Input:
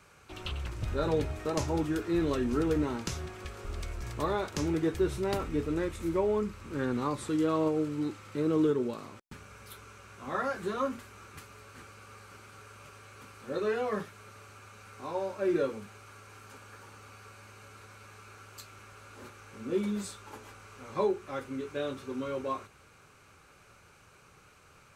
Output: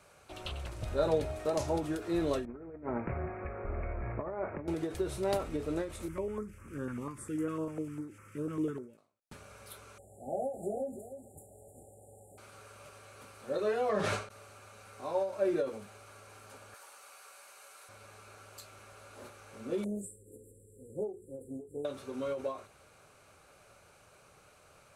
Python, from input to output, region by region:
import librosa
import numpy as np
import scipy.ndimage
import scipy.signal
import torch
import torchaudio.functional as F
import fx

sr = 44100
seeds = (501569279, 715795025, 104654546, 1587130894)

y = fx.chain(x, sr, fx.steep_lowpass(hz=2400.0, slope=96),
    fx.peak_eq(hz=200.0, db=3.0, octaves=2.5),
    fx.over_compress(threshold_db=-33.0, ratio=-0.5), at=(2.45, 4.68))
y = fx.chain(y, sr, fx.fixed_phaser(hz=1700.0, stages=4),
    fx.filter_held_notch(hz=10.0, low_hz=410.0, high_hz=3900.0), at=(6.08, 8.98))
y = fx.chain(y, sr, fx.brickwall_bandstop(low_hz=850.0, high_hz=6900.0),
    fx.echo_single(ms=305, db=-12.5), at=(9.98, 12.38))
y = fx.chain(y, sr, fx.lowpass(hz=6500.0, slope=12),
    fx.env_flatten(amount_pct=100), at=(13.89, 14.29))
y = fx.chain(y, sr, fx.highpass(hz=710.0, slope=12),
    fx.high_shelf(hz=8200.0, db=9.5), at=(16.74, 17.89))
y = fx.chain(y, sr, fx.brickwall_bandstop(low_hz=540.0, high_hz=7200.0),
    fx.doppler_dist(depth_ms=0.16), at=(19.84, 21.85))
y = fx.graphic_eq_15(y, sr, hz=(630, 4000, 10000), db=(11, 3, 8))
y = fx.end_taper(y, sr, db_per_s=130.0)
y = y * librosa.db_to_amplitude(-4.5)